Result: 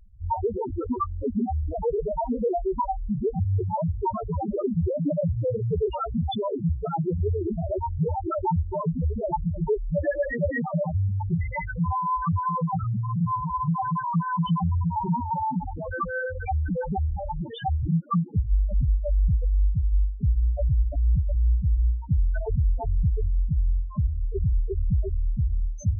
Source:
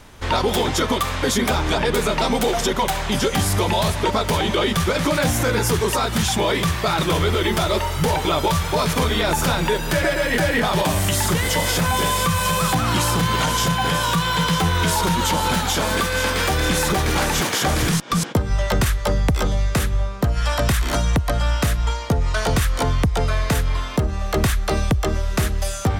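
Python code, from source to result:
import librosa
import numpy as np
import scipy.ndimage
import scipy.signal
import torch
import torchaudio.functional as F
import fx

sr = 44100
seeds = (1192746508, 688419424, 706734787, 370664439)

y = fx.spec_topn(x, sr, count=2)
y = fx.dynamic_eq(y, sr, hz=130.0, q=4.8, threshold_db=-40.0, ratio=4.0, max_db=4, at=(21.71, 23.05))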